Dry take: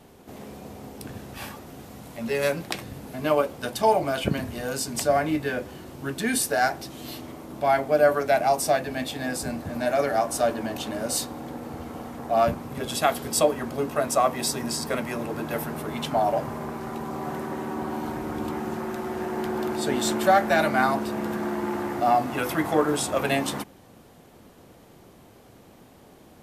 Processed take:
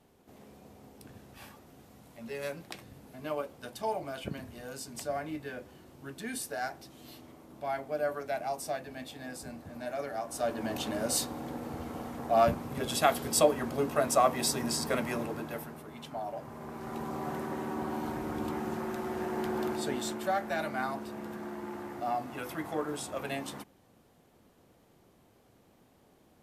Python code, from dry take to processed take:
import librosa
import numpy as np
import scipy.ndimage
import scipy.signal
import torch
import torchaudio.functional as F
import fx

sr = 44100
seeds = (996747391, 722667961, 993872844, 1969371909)

y = fx.gain(x, sr, db=fx.line((10.22, -13.0), (10.73, -3.0), (15.16, -3.0), (15.85, -15.0), (16.36, -15.0), (16.99, -4.5), (19.67, -4.5), (20.18, -12.0)))